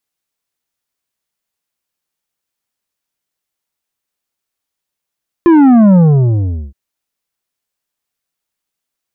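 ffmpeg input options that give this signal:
-f lavfi -i "aevalsrc='0.596*clip((1.27-t)/0.78,0,1)*tanh(2.66*sin(2*PI*350*1.27/log(65/350)*(exp(log(65/350)*t/1.27)-1)))/tanh(2.66)':d=1.27:s=44100"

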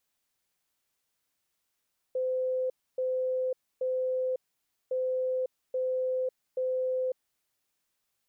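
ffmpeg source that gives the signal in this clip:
-f lavfi -i "aevalsrc='0.0473*sin(2*PI*513*t)*clip(min(mod(mod(t,2.76),0.83),0.55-mod(mod(t,2.76),0.83))/0.005,0,1)*lt(mod(t,2.76),2.49)':d=5.52:s=44100"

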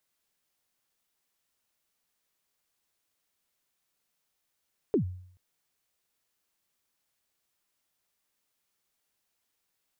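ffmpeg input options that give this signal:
-f lavfi -i "aevalsrc='0.112*pow(10,-3*t/0.62)*sin(2*PI*(470*0.102/log(91/470)*(exp(log(91/470)*min(t,0.102)/0.102)-1)+91*max(t-0.102,0)))':d=0.43:s=44100"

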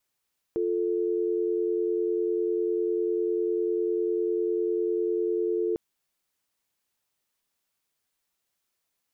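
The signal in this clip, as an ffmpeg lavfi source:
-f lavfi -i "aevalsrc='0.0473*(sin(2*PI*350*t)+sin(2*PI*440*t))':d=5.2:s=44100"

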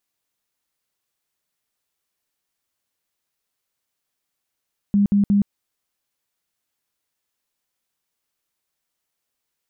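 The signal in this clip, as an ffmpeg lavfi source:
-f lavfi -i "aevalsrc='0.224*sin(2*PI*202*mod(t,0.18))*lt(mod(t,0.18),24/202)':d=0.54:s=44100"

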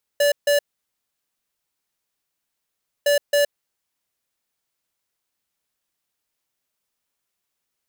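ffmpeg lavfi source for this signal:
-f lavfi -i "aevalsrc='0.141*(2*lt(mod(578*t,1),0.5)-1)*clip(min(mod(mod(t,2.86),0.27),0.12-mod(mod(t,2.86),0.27))/0.005,0,1)*lt(mod(t,2.86),0.54)':d=5.72:s=44100"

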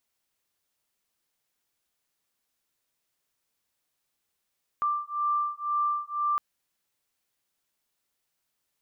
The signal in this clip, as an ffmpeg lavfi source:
-f lavfi -i "aevalsrc='0.0376*(sin(2*PI*1180*t)+sin(2*PI*1182*t))':d=1.56:s=44100"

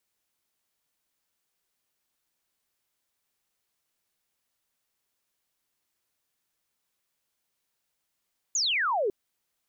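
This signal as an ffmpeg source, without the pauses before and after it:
-f lavfi -i "aevalsrc='0.0668*clip(t/0.002,0,1)*clip((0.55-t)/0.002,0,1)*sin(2*PI*7100*0.55/log(370/7100)*(exp(log(370/7100)*t/0.55)-1))':d=0.55:s=44100"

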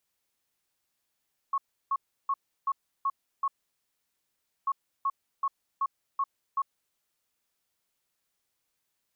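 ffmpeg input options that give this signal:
-f lavfi -i "aevalsrc='0.0631*sin(2*PI*1100*t)*clip(min(mod(mod(t,3.14),0.38),0.05-mod(mod(t,3.14),0.38))/0.005,0,1)*lt(mod(t,3.14),2.28)':d=6.28:s=44100"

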